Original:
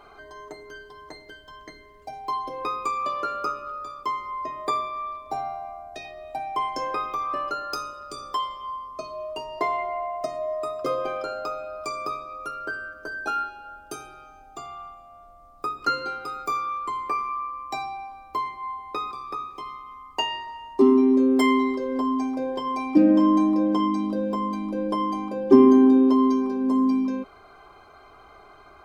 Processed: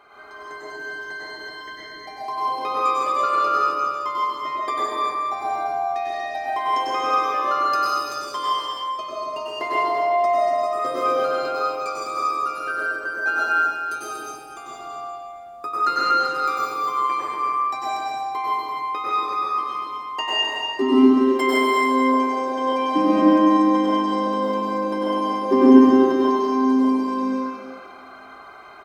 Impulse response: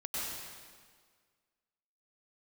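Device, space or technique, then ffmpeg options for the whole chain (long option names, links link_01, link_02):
stadium PA: -filter_complex "[0:a]highpass=frequency=250:poles=1,equalizer=frequency=1800:width_type=o:width=0.77:gain=6.5,aecho=1:1:163.3|239.1:0.355|0.501[link_01];[1:a]atrim=start_sample=2205[link_02];[link_01][link_02]afir=irnorm=-1:irlink=0,volume=1dB"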